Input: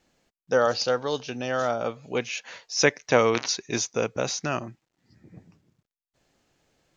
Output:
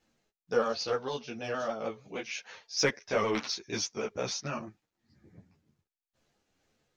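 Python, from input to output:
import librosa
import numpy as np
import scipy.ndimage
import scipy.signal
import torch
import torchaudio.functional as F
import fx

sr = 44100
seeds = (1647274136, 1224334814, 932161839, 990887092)

p1 = fx.pitch_ramps(x, sr, semitones=-1.5, every_ms=154)
p2 = np.clip(p1, -10.0 ** (-20.5 / 20.0), 10.0 ** (-20.5 / 20.0))
p3 = p1 + F.gain(torch.from_numpy(p2), -10.0).numpy()
p4 = fx.ensemble(p3, sr)
y = F.gain(torch.from_numpy(p4), -4.5).numpy()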